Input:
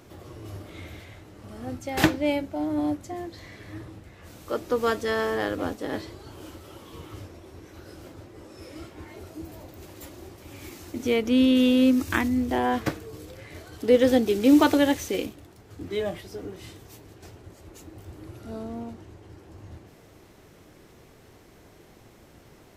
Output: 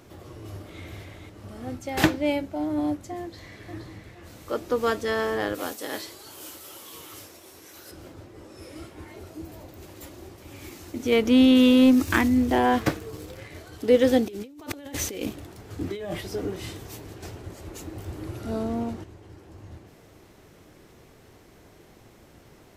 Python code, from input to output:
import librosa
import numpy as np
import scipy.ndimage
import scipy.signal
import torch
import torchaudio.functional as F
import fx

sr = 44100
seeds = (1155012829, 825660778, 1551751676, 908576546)

y = fx.echo_throw(x, sr, start_s=0.41, length_s=0.42, ms=460, feedback_pct=45, wet_db=-5.5)
y = fx.echo_throw(y, sr, start_s=3.21, length_s=0.46, ms=470, feedback_pct=40, wet_db=-6.0)
y = fx.riaa(y, sr, side='recording', at=(5.54, 7.9), fade=0.02)
y = fx.peak_eq(y, sr, hz=10000.0, db=6.0, octaves=0.36, at=(8.56, 9.12))
y = fx.leveller(y, sr, passes=1, at=(11.12, 13.48))
y = fx.over_compress(y, sr, threshold_db=-34.0, ratio=-1.0, at=(14.28, 19.04))